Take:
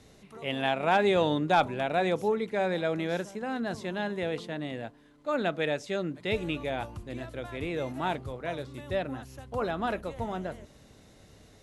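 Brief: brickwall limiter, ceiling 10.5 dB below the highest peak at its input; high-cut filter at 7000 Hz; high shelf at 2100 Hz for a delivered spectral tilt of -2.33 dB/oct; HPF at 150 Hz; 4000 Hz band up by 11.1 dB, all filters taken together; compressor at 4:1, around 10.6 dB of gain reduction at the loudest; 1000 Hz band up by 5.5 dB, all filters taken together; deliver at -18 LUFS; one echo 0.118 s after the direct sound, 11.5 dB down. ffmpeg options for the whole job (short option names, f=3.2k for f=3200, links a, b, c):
-af "highpass=150,lowpass=7k,equalizer=f=1k:t=o:g=6,highshelf=f=2.1k:g=7,equalizer=f=4k:t=o:g=7,acompressor=threshold=-26dB:ratio=4,alimiter=level_in=0.5dB:limit=-24dB:level=0:latency=1,volume=-0.5dB,aecho=1:1:118:0.266,volume=17.5dB"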